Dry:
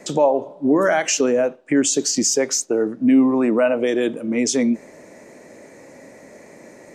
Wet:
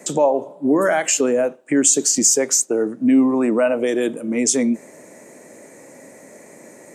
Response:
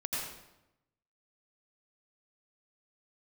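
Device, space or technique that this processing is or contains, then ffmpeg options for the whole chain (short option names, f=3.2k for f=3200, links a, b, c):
budget condenser microphone: -filter_complex "[0:a]highpass=110,highshelf=f=6.4k:t=q:w=1.5:g=8,asettb=1/sr,asplit=3[a][b][c];[a]atrim=end=0.564[d];[b]atrim=start=0.56:end=1.48,asetpts=PTS-STARTPTS,afade=t=in:d=0.004:c=qsin,afade=t=out:st=0.916:d=0.004:c=qsin,bandreject=f=5.9k:w=5.1[e];[c]atrim=start=1.476[f];[d][e]acrossfade=d=0.004:c1=hsin:c2=qsin[g];[g][f]acrossfade=d=0.004:c1=qsin:c2=hsin"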